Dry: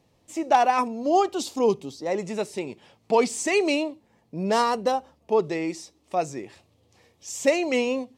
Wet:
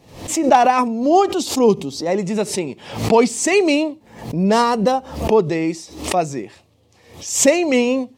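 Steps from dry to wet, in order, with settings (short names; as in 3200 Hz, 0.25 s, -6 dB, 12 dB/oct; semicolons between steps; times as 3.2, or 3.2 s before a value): dynamic EQ 180 Hz, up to +6 dB, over -39 dBFS, Q 0.96; backwards sustainer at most 96 dB/s; gain +5.5 dB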